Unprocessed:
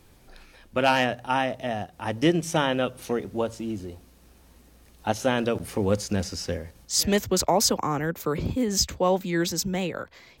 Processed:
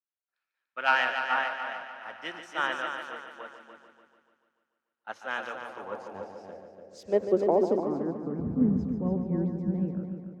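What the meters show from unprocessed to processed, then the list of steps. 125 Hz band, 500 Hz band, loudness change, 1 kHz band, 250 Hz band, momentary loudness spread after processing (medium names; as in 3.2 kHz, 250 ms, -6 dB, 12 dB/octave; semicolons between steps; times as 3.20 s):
-4.5 dB, -4.5 dB, -3.5 dB, -4.5 dB, -3.5 dB, 19 LU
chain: multi-head delay 146 ms, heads first and second, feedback 68%, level -7.5 dB; band-pass sweep 1.4 kHz -> 210 Hz, 5.40–8.69 s; three bands expanded up and down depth 100%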